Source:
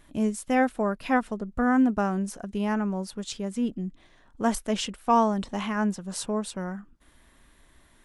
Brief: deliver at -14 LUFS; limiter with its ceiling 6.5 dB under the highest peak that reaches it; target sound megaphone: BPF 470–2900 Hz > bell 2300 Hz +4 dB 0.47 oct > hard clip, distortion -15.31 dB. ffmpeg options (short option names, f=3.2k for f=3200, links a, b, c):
-af "alimiter=limit=-17.5dB:level=0:latency=1,highpass=470,lowpass=2.9k,equalizer=f=2.3k:t=o:w=0.47:g=4,asoftclip=type=hard:threshold=-22.5dB,volume=21dB"